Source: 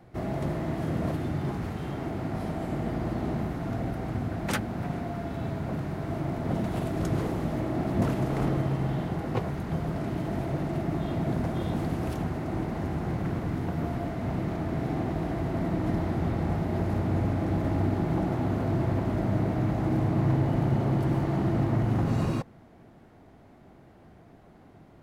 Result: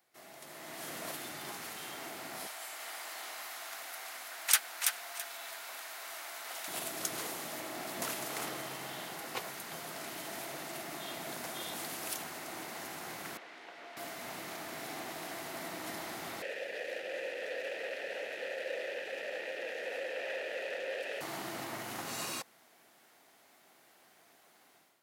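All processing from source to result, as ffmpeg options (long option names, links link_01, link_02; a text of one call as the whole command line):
ffmpeg -i in.wav -filter_complex "[0:a]asettb=1/sr,asplit=3[link_01][link_02][link_03];[link_01]atrim=end=2.474[link_04];[link_02]atrim=start=2.47:end=6.68,asetpts=PTS-STARTPTS,afade=type=in:duration=0.004:curve=qsin,afade=type=out:start_time=4.206:duration=0.004:curve=qsin,highpass=860,aecho=1:1:331|662|993:0.562|0.141|0.0351,atrim=end_sample=185661[link_05];[link_03]atrim=start=6.676[link_06];[link_04][link_05]acrossfade=duration=0.004:curve1=hsin:curve2=qsin[link_07];[link_07][link_06]acrossfade=duration=0.004:curve1=qsin:curve2=hsin,asettb=1/sr,asplit=3[link_08][link_09][link_10];[link_08]atrim=end=13.374[link_11];[link_09]atrim=start=13.37:end=13.97,asetpts=PTS-STARTPTS,afade=type=in:duration=0.004:curve=qsin,afade=type=out:start_time=0.596:duration=0.004:curve=qsin,highpass=520,lowpass=2700,equalizer=frequency=1100:width_type=o:width=1.4:gain=-7[link_12];[link_10]atrim=start=13.966[link_13];[link_11][link_12]acrossfade=duration=0.004:curve1=hsin:curve2=qsin[link_14];[link_14][link_13]acrossfade=duration=0.004:curve1=qsin:curve2=hsin,asettb=1/sr,asplit=3[link_15][link_16][link_17];[link_15]atrim=end=16.424[link_18];[link_16]atrim=start=16.42:end=21.21,asetpts=PTS-STARTPTS,afade=type=in:duration=0.004:curve=qsin,afade=type=out:start_time=4.786:duration=0.004:curve=qsin,equalizer=frequency=680:width=0.59:gain=-8.5,aeval=exprs='0.168*sin(PI/2*6.31*val(0)/0.168)':channel_layout=same,asplit=3[link_19][link_20][link_21];[link_19]bandpass=frequency=530:width_type=q:width=8,volume=0dB[link_22];[link_20]bandpass=frequency=1840:width_type=q:width=8,volume=-6dB[link_23];[link_21]bandpass=frequency=2480:width_type=q:width=8,volume=-9dB[link_24];[link_22][link_23][link_24]amix=inputs=3:normalize=0[link_25];[link_17]atrim=start=21.206[link_26];[link_18][link_25]acrossfade=duration=0.004:curve1=hsin:curve2=qsin[link_27];[link_27][link_26]acrossfade=duration=0.004:curve1=qsin:curve2=hsin,highpass=frequency=220:poles=1,aderivative,dynaudnorm=framelen=450:gausssize=3:maxgain=12dB" out.wav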